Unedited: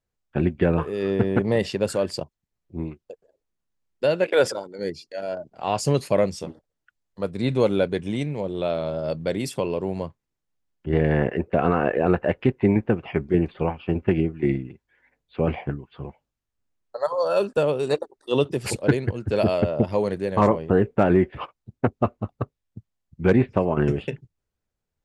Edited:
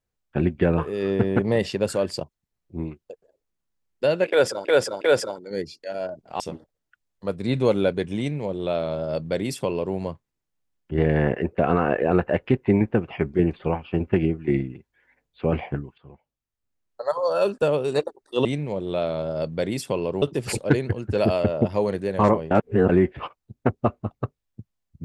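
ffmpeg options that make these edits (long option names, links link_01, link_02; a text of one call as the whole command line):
ffmpeg -i in.wav -filter_complex "[0:a]asplit=9[link_01][link_02][link_03][link_04][link_05][link_06][link_07][link_08][link_09];[link_01]atrim=end=4.652[link_10];[link_02]atrim=start=4.288:end=4.652[link_11];[link_03]atrim=start=4.288:end=5.682[link_12];[link_04]atrim=start=6.348:end=15.93,asetpts=PTS-STARTPTS,afade=type=out:start_time=9.578:duration=0.004:curve=hsin:silence=0.177828[link_13];[link_05]atrim=start=15.93:end=18.402,asetpts=PTS-STARTPTS,afade=type=in:duration=1.04:silence=0.177828[link_14];[link_06]atrim=start=8.128:end=9.902[link_15];[link_07]atrim=start=18.398:end=20.692[link_16];[link_08]atrim=start=20.688:end=21.072,asetpts=PTS-STARTPTS,areverse[link_17];[link_09]atrim=start=21.068[link_18];[link_10][link_11]acrossfade=duration=0.004:curve1=hsin:curve2=hsin[link_19];[link_19][link_12]acrossfade=duration=0.004:curve1=hsin:curve2=hsin[link_20];[link_13][link_14]concat=n=2:v=0:a=1[link_21];[link_20][link_21]acrossfade=duration=0.004:curve1=hsin:curve2=hsin[link_22];[link_22][link_15]acrossfade=duration=0.004:curve1=hsin:curve2=hsin[link_23];[link_23][link_16]acrossfade=duration=0.004:curve1=hsin:curve2=hsin[link_24];[link_24][link_17]acrossfade=duration=0.004:curve1=hsin:curve2=hsin[link_25];[link_25][link_18]acrossfade=duration=0.004:curve1=hsin:curve2=hsin" out.wav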